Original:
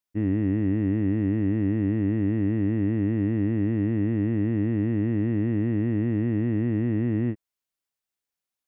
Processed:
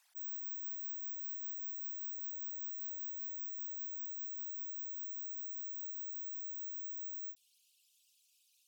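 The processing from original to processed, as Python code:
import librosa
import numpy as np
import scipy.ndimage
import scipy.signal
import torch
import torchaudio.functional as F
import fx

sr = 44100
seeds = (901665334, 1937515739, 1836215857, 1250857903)

y = fx.envelope_sharpen(x, sr, power=3.0)
y = np.repeat(y[::2], 2)[:len(y)]
y = fx.steep_highpass(y, sr, hz=fx.steps((0.0, 670.0), (3.78, 2500.0)), slope=96)
y = y * 10.0 ** (17.0 / 20.0)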